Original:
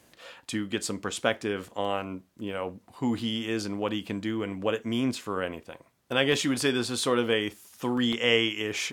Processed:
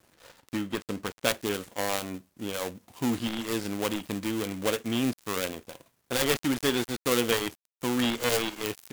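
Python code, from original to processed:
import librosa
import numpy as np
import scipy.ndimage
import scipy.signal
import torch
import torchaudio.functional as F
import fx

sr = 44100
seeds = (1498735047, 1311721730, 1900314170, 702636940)

y = fx.dead_time(x, sr, dead_ms=0.24)
y = fx.high_shelf(y, sr, hz=4800.0, db=fx.steps((0.0, 3.0), (1.27, 9.5)))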